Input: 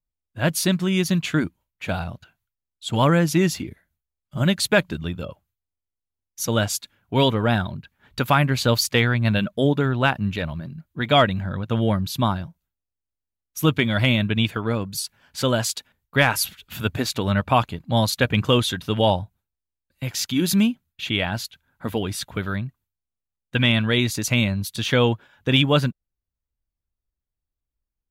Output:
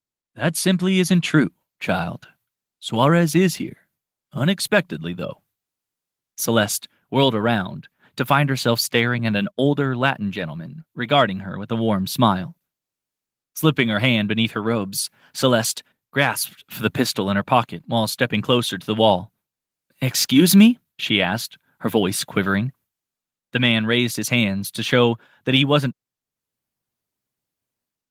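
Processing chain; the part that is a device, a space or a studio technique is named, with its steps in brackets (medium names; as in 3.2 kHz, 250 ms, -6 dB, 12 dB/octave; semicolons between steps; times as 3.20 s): 9.18–10.25 s: gate -27 dBFS, range -15 dB; video call (high-pass 130 Hz 24 dB/octave; level rider gain up to 12 dB; trim -1 dB; Opus 24 kbps 48 kHz)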